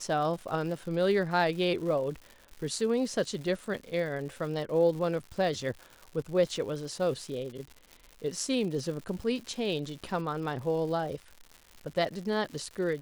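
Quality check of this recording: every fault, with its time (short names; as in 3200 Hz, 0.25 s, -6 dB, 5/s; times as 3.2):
crackle 200/s -39 dBFS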